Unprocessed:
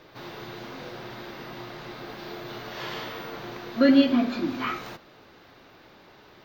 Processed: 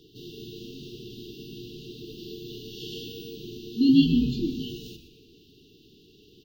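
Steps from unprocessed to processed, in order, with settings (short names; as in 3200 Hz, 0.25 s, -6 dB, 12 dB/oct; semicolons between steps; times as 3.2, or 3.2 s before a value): FFT band-reject 470–2700 Hz; frequency-shifting echo 0.123 s, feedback 37%, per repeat -110 Hz, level -11 dB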